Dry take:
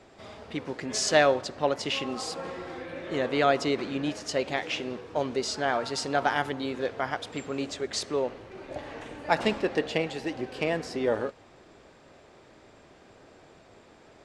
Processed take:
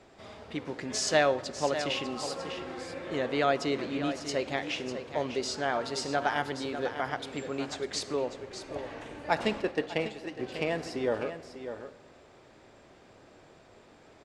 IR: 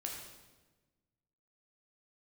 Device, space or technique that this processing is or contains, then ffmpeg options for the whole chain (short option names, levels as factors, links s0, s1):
compressed reverb return: -filter_complex "[0:a]aecho=1:1:598:0.299,asplit=3[s0][s1][s2];[s0]afade=t=out:st=9.61:d=0.02[s3];[s1]agate=range=0.447:threshold=0.0398:ratio=16:detection=peak,afade=t=in:st=9.61:d=0.02,afade=t=out:st=10.39:d=0.02[s4];[s2]afade=t=in:st=10.39:d=0.02[s5];[s3][s4][s5]amix=inputs=3:normalize=0,asplit=2[s6][s7];[1:a]atrim=start_sample=2205[s8];[s7][s8]afir=irnorm=-1:irlink=0,acompressor=threshold=0.0355:ratio=6,volume=0.335[s9];[s6][s9]amix=inputs=2:normalize=0,volume=0.631"